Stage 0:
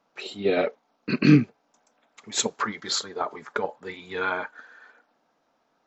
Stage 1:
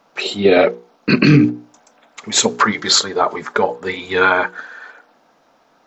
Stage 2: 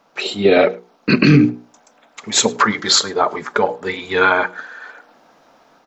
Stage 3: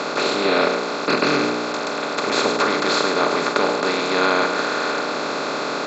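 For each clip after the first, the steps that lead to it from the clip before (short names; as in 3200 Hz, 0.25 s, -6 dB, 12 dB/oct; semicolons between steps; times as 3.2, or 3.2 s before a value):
notches 60/120/180/240/300/360/420/480 Hz; maximiser +15.5 dB; gain -1 dB
AGC gain up to 5.5 dB; outdoor echo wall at 18 m, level -24 dB; gain -1 dB
per-bin compression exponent 0.2; BPF 310–4500 Hz; gain -11.5 dB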